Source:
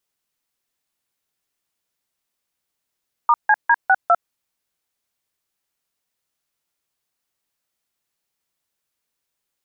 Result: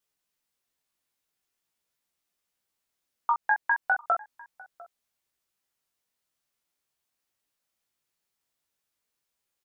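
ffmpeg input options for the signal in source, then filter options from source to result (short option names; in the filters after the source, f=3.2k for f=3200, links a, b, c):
-f lavfi -i "aevalsrc='0.224*clip(min(mod(t,0.202),0.05-mod(t,0.202))/0.002,0,1)*(eq(floor(t/0.202),0)*(sin(2*PI*941*mod(t,0.202))+sin(2*PI*1209*mod(t,0.202)))+eq(floor(t/0.202),1)*(sin(2*PI*852*mod(t,0.202))+sin(2*PI*1633*mod(t,0.202)))+eq(floor(t/0.202),2)*(sin(2*PI*941*mod(t,0.202))+sin(2*PI*1633*mod(t,0.202)))+eq(floor(t/0.202),3)*(sin(2*PI*770*mod(t,0.202))+sin(2*PI*1477*mod(t,0.202)))+eq(floor(t/0.202),4)*(sin(2*PI*697*mod(t,0.202))+sin(2*PI*1336*mod(t,0.202))))':d=1.01:s=44100"
-filter_complex "[0:a]acompressor=threshold=-18dB:ratio=6,asplit=2[a][b];[b]adelay=699.7,volume=-21dB,highshelf=f=4k:g=-15.7[c];[a][c]amix=inputs=2:normalize=0,flanger=delay=16:depth=3.7:speed=0.42"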